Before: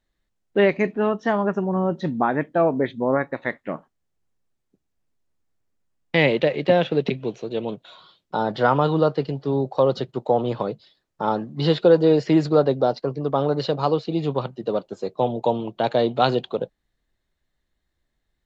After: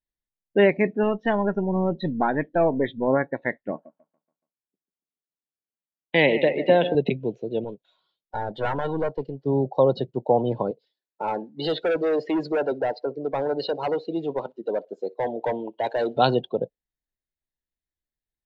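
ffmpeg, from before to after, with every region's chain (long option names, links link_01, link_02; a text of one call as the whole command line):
ffmpeg -i in.wav -filter_complex "[0:a]asettb=1/sr,asplit=3[link_01][link_02][link_03];[link_01]atrim=end=1.034[link_04];[link_02]atrim=start=1.03:end=3.08,asetpts=PTS-STARTPTS,afade=type=in:duration=0.004:curve=qsin,afade=type=out:start_time=2.046:duration=0.004:curve=qsin,aeval=exprs='if(lt(val(0),0),0.708*val(0),val(0))':channel_layout=same,lowpass=frequency=3900:width_type=q:width=2.1,acompressor=mode=upward:threshold=-35dB:ratio=2.5:attack=3.2:release=140:knee=2.83:detection=peak[link_05];[link_03]atrim=start=3.076[link_06];[link_04][link_05]acrossfade=duration=0.004:curve1=hsin:curve2=qsin[link_07];[link_07][link_06]acrossfade=duration=0.004:curve1=qsin:curve2=hsin,asettb=1/sr,asplit=3[link_08][link_09][link_10];[link_08]atrim=end=3.714[link_11];[link_09]atrim=start=3.71:end=6.95,asetpts=PTS-STARTPTS,afade=type=in:duration=0.004:curve=qsin,afade=type=out:start_time=3.236:duration=0.004:curve=qsin,highpass=200,aecho=1:1:142|284|426|568|710:0.251|0.131|0.0679|0.0353|0.0184,atrim=end_sample=142884[link_12];[link_10]atrim=start=6.946[link_13];[link_11][link_12]acrossfade=duration=0.004:curve1=hsin:curve2=qsin[link_14];[link_14][link_13]acrossfade=duration=0.004:curve1=qsin:curve2=hsin,asettb=1/sr,asplit=3[link_15][link_16][link_17];[link_15]atrim=end=7.644[link_18];[link_16]atrim=start=7.64:end=9.46,asetpts=PTS-STARTPTS,afade=type=in:duration=0.004:curve=qsin,afade=type=out:start_time=1.816:duration=0.004:curve=qsin,equalizer=frequency=99:width_type=o:width=2.3:gain=-8,aeval=exprs='(tanh(10*val(0)+0.55)-tanh(0.55))/10':channel_layout=same[link_19];[link_17]atrim=start=9.456[link_20];[link_18][link_19]acrossfade=duration=0.004:curve1=hsin:curve2=qsin[link_21];[link_21][link_20]acrossfade=duration=0.004:curve1=qsin:curve2=hsin,asettb=1/sr,asplit=3[link_22][link_23][link_24];[link_22]atrim=end=10.714[link_25];[link_23]atrim=start=10.71:end=16.17,asetpts=PTS-STARTPTS,afade=type=in:duration=0.004:curve=qsin,afade=type=out:start_time=5.456:duration=0.004:curve=qsin,highpass=310,asoftclip=type=hard:threshold=-20dB,aecho=1:1:61|122|183:0.0841|0.0303|0.0109,atrim=end_sample=240786[link_26];[link_24]atrim=start=16.166[link_27];[link_25][link_26]acrossfade=duration=0.004:curve1=hsin:curve2=qsin[link_28];[link_28][link_27]acrossfade=duration=0.004:curve1=qsin:curve2=hsin,bandreject=frequency=1200:width=5.7,afftdn=noise_reduction=19:noise_floor=-33" out.wav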